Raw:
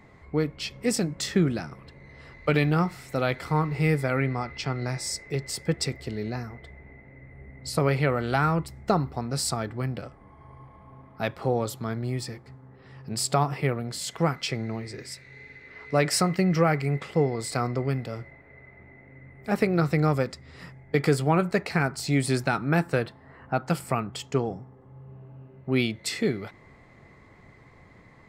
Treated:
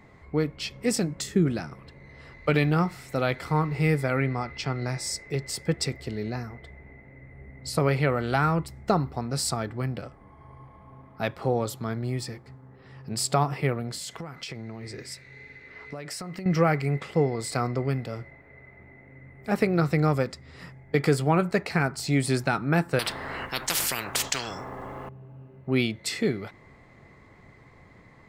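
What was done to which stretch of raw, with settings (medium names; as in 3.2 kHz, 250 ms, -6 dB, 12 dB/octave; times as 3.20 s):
1.23–1.46 s: time-frequency box 470–6200 Hz -8 dB
13.95–16.46 s: compression 16:1, threshold -32 dBFS
22.99–25.09 s: spectrum-flattening compressor 10:1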